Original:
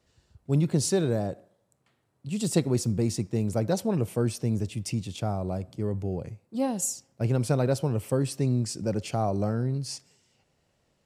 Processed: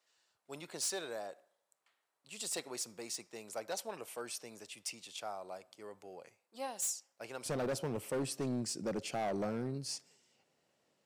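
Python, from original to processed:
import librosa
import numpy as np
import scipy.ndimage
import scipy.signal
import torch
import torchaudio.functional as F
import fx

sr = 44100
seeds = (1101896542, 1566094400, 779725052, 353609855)

y = fx.highpass(x, sr, hz=fx.steps((0.0, 850.0), (7.46, 230.0)), slope=12)
y = np.clip(y, -10.0 ** (-27.5 / 20.0), 10.0 ** (-27.5 / 20.0))
y = y * 10.0 ** (-4.0 / 20.0)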